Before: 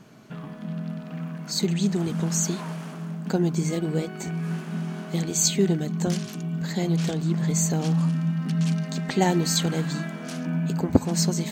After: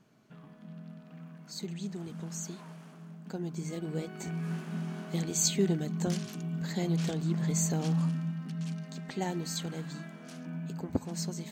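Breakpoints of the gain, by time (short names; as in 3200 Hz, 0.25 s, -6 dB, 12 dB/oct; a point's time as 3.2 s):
3.34 s -14.5 dB
4.32 s -6 dB
8.03 s -6 dB
8.51 s -12.5 dB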